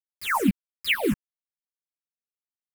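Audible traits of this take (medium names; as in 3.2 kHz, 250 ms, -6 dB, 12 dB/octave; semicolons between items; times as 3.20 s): a quantiser's noise floor 6-bit, dither none; phasing stages 4, 2.3 Hz, lowest notch 540–1200 Hz; tremolo saw down 2.9 Hz, depth 45%; a shimmering, thickened sound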